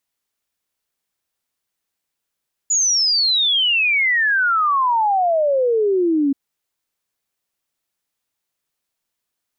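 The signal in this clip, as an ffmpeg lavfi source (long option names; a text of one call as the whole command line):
ffmpeg -f lavfi -i "aevalsrc='0.2*clip(min(t,3.63-t)/0.01,0,1)*sin(2*PI*7000*3.63/log(270/7000)*(exp(log(270/7000)*t/3.63)-1))':duration=3.63:sample_rate=44100" out.wav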